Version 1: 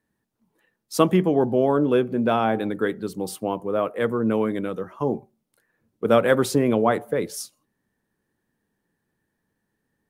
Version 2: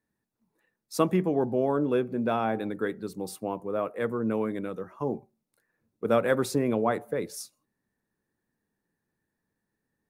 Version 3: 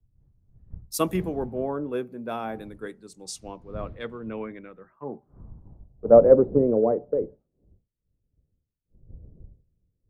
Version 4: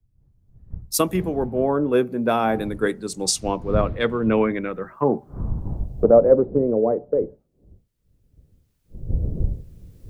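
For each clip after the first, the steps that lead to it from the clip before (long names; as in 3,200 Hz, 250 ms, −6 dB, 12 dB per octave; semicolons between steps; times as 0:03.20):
notch filter 3,100 Hz, Q 6.9; level −6 dB
wind on the microphone 180 Hz −42 dBFS; low-pass filter sweep 13,000 Hz → 510 Hz, 0:02.53–0:06.37; multiband upward and downward expander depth 100%; level −4.5 dB
camcorder AGC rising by 8.9 dB per second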